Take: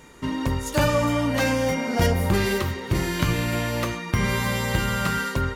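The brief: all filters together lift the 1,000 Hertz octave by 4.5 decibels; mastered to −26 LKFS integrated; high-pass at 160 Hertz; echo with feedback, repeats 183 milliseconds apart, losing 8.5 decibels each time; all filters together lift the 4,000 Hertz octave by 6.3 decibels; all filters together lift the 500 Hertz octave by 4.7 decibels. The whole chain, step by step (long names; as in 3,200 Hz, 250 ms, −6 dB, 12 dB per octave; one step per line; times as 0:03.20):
high-pass filter 160 Hz
parametric band 500 Hz +4.5 dB
parametric band 1,000 Hz +4 dB
parametric band 4,000 Hz +8 dB
repeating echo 183 ms, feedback 38%, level −8.5 dB
level −5.5 dB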